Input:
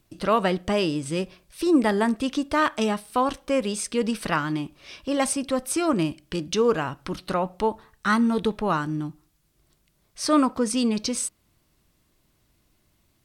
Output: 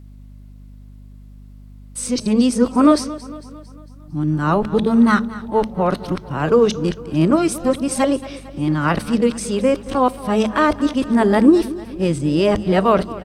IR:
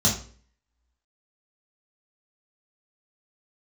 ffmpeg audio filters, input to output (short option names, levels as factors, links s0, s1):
-filter_complex "[0:a]areverse,tiltshelf=f=1100:g=4,aecho=1:1:226|452|678|904|1130:0.141|0.0749|0.0397|0.021|0.0111,asplit=2[s0][s1];[1:a]atrim=start_sample=2205[s2];[s1][s2]afir=irnorm=-1:irlink=0,volume=0.0266[s3];[s0][s3]amix=inputs=2:normalize=0,aeval=exprs='val(0)+0.00631*(sin(2*PI*50*n/s)+sin(2*PI*2*50*n/s)/2+sin(2*PI*3*50*n/s)/3+sin(2*PI*4*50*n/s)/4+sin(2*PI*5*50*n/s)/5)':c=same,volume=1.78"